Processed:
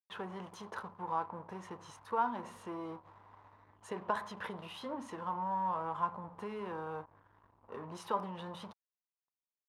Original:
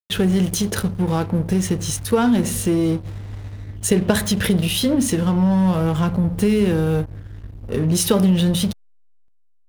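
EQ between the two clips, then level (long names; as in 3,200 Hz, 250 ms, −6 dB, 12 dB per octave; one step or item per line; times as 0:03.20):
resonant band-pass 1,000 Hz, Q 5.6
−1.0 dB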